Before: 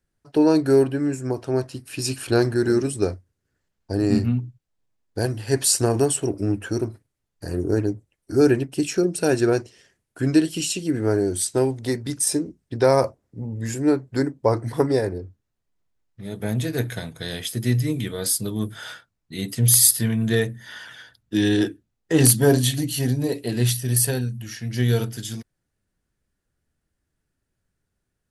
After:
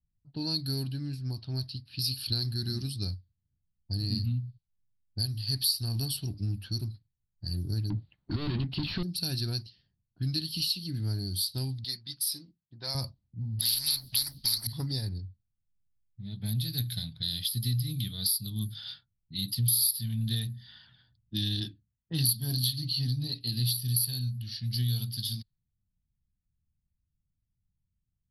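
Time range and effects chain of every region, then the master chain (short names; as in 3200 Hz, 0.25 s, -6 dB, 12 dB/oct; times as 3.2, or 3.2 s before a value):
7.9–9.03 overdrive pedal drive 34 dB, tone 1900 Hz, clips at -6 dBFS + air absorption 400 m
11.84–12.95 HPF 820 Hz 6 dB/oct + bell 3900 Hz -2.5 dB 0.3 oct + comb 6 ms, depth 33%
13.59–14.67 tone controls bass 0 dB, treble +15 dB + spectral compressor 10:1
21.6–23.41 HPF 44 Hz + low-pass opened by the level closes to 1300 Hz, open at -15 dBFS
whole clip: EQ curve 110 Hz 0 dB, 190 Hz -4 dB, 450 Hz -28 dB, 810 Hz -19 dB, 1500 Hz -19 dB, 2300 Hz -14 dB, 4500 Hz +14 dB, 7200 Hz -28 dB, 11000 Hz +8 dB; compressor 3:1, threshold -26 dBFS; low-pass opened by the level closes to 530 Hz, open at -27.5 dBFS; gain -1.5 dB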